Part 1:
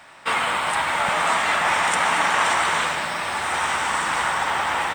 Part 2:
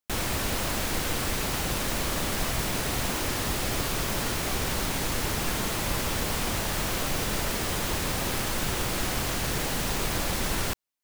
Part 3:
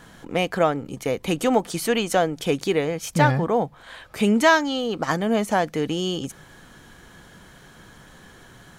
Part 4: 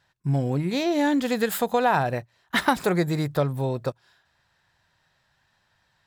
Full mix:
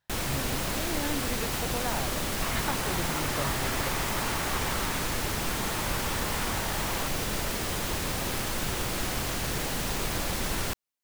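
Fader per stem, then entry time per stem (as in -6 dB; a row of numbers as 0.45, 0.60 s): -15.5 dB, -2.0 dB, off, -13.5 dB; 2.15 s, 0.00 s, off, 0.00 s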